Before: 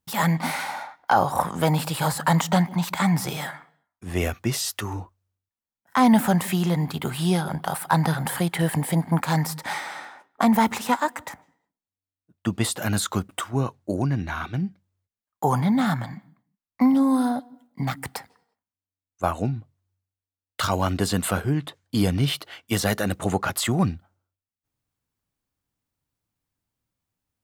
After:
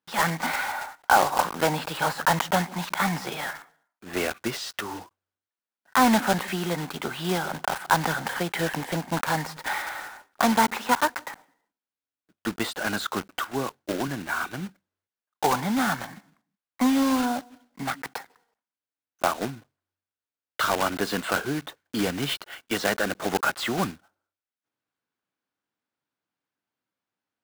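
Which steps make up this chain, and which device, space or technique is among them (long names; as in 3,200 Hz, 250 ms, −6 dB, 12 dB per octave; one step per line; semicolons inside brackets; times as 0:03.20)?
0:13.52–0:14.08: high-pass filter 85 Hz 12 dB per octave
early digital voice recorder (band-pass filter 280–3,900 Hz; one scale factor per block 3 bits)
parametric band 1,500 Hz +5.5 dB 0.25 octaves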